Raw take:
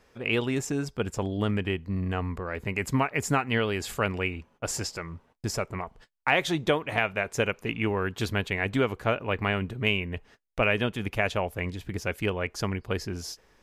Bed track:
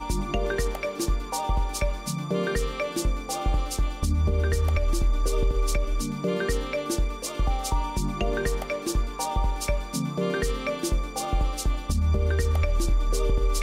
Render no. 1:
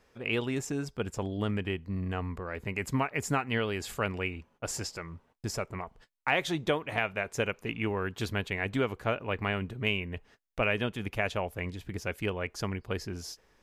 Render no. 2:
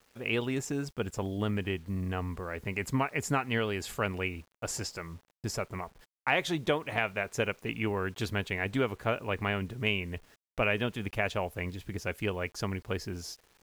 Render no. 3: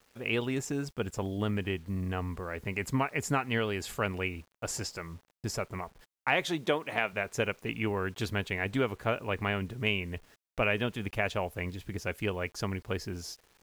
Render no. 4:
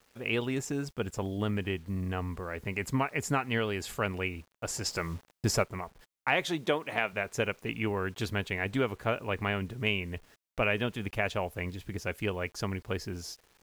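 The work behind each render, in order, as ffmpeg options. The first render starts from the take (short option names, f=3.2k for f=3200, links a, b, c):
-af "volume=-4dB"
-af "acrusher=bits=9:mix=0:aa=0.000001"
-filter_complex "[0:a]asettb=1/sr,asplit=3[a][b][c];[a]atrim=end=6.454[d];[b]atrim=start=6.45:end=7.13,asetpts=PTS-STARTPTS,afade=t=in:d=0.004:c=qsin,afade=t=out:st=0.676:d=0.004:c=qsin,highpass=170[e];[c]atrim=start=7.126[f];[d][e]acrossfade=d=0.004:c1=hsin:c2=qsin[g];[g][f]acrossfade=d=0.004:c1=qsin:c2=hsin"
-filter_complex "[0:a]asplit=3[a][b][c];[a]afade=t=out:st=4.85:d=0.02[d];[b]acontrast=73,afade=t=in:st=4.85:d=0.02,afade=t=out:st=5.62:d=0.02[e];[c]afade=t=in:st=5.62:d=0.02[f];[d][e][f]amix=inputs=3:normalize=0"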